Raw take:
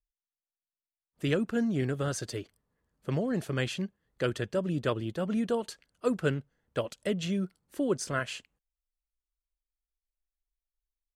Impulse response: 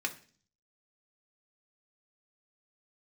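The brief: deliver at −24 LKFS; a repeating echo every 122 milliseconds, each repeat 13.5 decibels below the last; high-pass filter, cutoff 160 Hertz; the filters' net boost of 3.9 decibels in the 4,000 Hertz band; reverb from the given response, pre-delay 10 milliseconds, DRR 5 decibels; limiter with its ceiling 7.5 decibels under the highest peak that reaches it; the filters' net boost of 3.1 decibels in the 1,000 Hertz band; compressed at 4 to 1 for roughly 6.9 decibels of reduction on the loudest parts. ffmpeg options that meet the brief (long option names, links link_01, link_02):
-filter_complex "[0:a]highpass=160,equalizer=frequency=1000:width_type=o:gain=4,equalizer=frequency=4000:width_type=o:gain=5,acompressor=threshold=-30dB:ratio=4,alimiter=level_in=1dB:limit=-24dB:level=0:latency=1,volume=-1dB,aecho=1:1:122|244:0.211|0.0444,asplit=2[link_01][link_02];[1:a]atrim=start_sample=2205,adelay=10[link_03];[link_02][link_03]afir=irnorm=-1:irlink=0,volume=-9.5dB[link_04];[link_01][link_04]amix=inputs=2:normalize=0,volume=12.5dB"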